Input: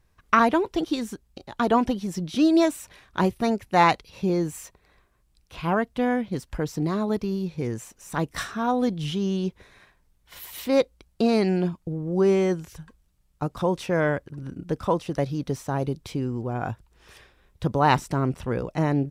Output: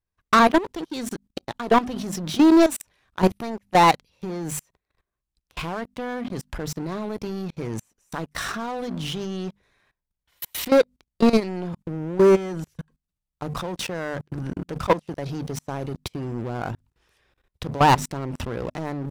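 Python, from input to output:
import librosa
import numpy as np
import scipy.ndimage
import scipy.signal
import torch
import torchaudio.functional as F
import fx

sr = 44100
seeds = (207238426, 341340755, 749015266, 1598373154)

y = fx.hum_notches(x, sr, base_hz=50, count=5)
y = fx.level_steps(y, sr, step_db=20)
y = fx.leveller(y, sr, passes=3)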